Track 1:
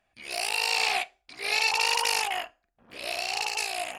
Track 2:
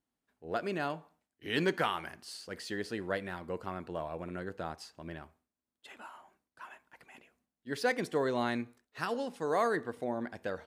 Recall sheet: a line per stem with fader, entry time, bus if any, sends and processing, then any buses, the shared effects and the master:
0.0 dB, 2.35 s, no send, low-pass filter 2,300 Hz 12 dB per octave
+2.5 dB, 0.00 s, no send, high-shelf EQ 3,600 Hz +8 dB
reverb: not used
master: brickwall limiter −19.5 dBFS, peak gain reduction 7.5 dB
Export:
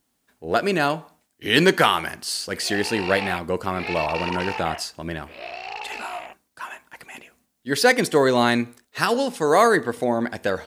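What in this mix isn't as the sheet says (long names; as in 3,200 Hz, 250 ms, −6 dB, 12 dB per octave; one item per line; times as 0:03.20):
stem 2 +2.5 dB → +13.0 dB
master: missing brickwall limiter −19.5 dBFS, peak gain reduction 7.5 dB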